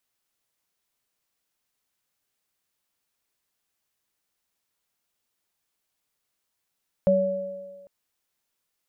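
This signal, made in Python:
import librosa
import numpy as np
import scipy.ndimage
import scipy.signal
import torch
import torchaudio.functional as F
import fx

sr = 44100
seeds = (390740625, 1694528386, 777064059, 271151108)

y = fx.additive_free(sr, length_s=0.8, hz=191.0, level_db=-21, upper_db=(5.5,), decay_s=1.1, upper_decays_s=(1.55,), upper_hz=(565.0,))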